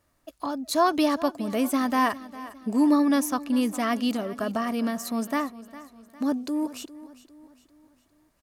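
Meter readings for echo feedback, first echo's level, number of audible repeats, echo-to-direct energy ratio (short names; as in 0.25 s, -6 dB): 45%, -17.0 dB, 3, -16.0 dB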